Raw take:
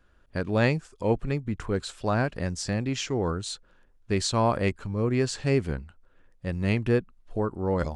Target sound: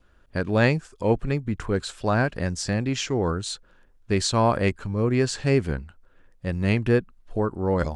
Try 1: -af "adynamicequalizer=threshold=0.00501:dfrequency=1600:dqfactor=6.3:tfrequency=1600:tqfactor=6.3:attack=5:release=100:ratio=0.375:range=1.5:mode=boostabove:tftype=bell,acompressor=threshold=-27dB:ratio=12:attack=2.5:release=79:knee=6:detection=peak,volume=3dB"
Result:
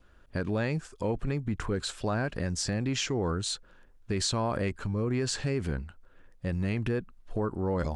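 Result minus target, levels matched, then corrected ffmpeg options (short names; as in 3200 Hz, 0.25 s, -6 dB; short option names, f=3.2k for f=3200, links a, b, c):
compressor: peak gain reduction +12.5 dB
-af "adynamicequalizer=threshold=0.00501:dfrequency=1600:dqfactor=6.3:tfrequency=1600:tqfactor=6.3:attack=5:release=100:ratio=0.375:range=1.5:mode=boostabove:tftype=bell,volume=3dB"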